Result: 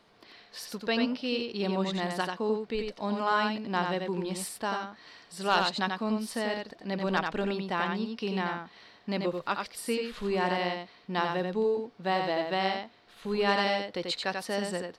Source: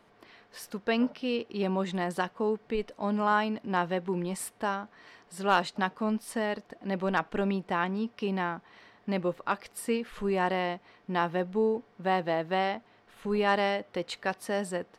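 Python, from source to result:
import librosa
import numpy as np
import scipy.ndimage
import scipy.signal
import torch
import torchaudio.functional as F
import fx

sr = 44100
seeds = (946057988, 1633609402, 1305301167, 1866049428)

p1 = fx.peak_eq(x, sr, hz=4300.0, db=10.0, octaves=0.89)
p2 = p1 + fx.echo_single(p1, sr, ms=89, db=-4.5, dry=0)
y = p2 * 10.0 ** (-2.0 / 20.0)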